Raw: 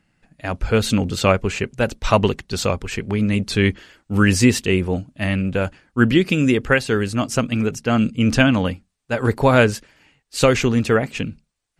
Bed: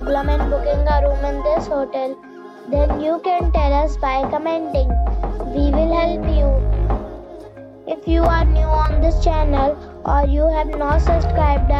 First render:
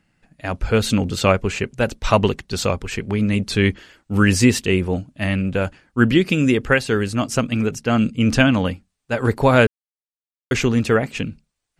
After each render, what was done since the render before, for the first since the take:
0:09.67–0:10.51: silence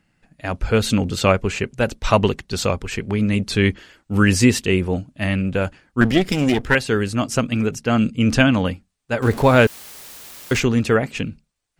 0:06.01–0:06.75: lower of the sound and its delayed copy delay 0.56 ms
0:09.22–0:10.60: converter with a step at zero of −27.5 dBFS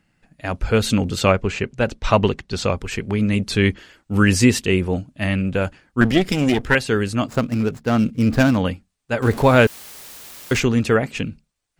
0:01.30–0:02.76: high-frequency loss of the air 56 metres
0:07.28–0:08.58: running median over 15 samples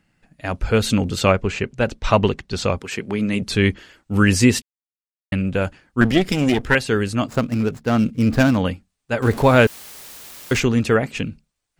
0:02.79–0:03.42: high-pass filter 170 Hz
0:04.62–0:05.32: silence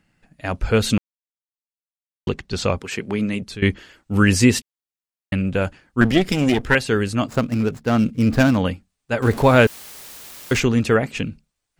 0:00.98–0:02.27: silence
0:03.20–0:03.62: fade out, to −18 dB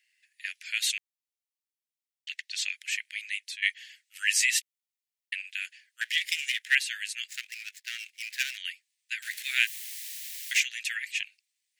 Butterworth high-pass 1,800 Hz 72 dB per octave
dynamic equaliser 4,800 Hz, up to −4 dB, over −46 dBFS, Q 2.7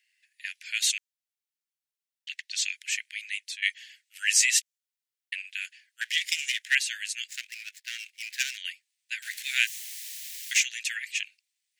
elliptic high-pass filter 1,400 Hz, stop band 40 dB
dynamic equaliser 6,600 Hz, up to +7 dB, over −46 dBFS, Q 1.4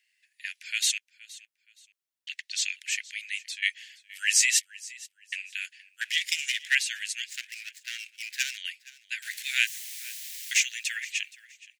repeating echo 471 ms, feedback 27%, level −20.5 dB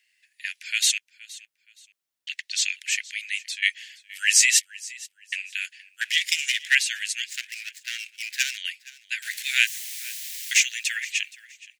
level +4.5 dB

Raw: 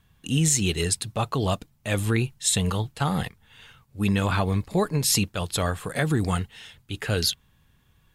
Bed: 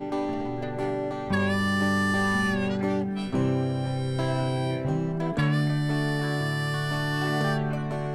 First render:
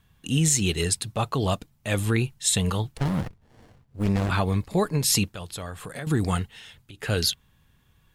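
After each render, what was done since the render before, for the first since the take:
0:02.97–0:04.30: windowed peak hold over 33 samples
0:05.35–0:06.07: downward compressor 2.5 to 1, threshold −36 dBFS
0:06.58–0:07.03: downward compressor 16 to 1, threshold −40 dBFS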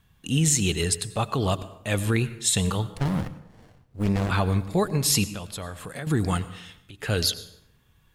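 dense smooth reverb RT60 0.81 s, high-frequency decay 0.65×, pre-delay 80 ms, DRR 15 dB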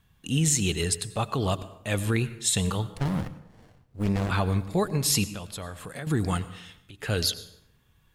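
level −2 dB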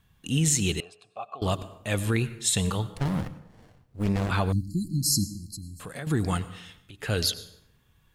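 0:00.80–0:01.42: formant filter a
0:04.52–0:05.80: linear-phase brick-wall band-stop 350–4,000 Hz

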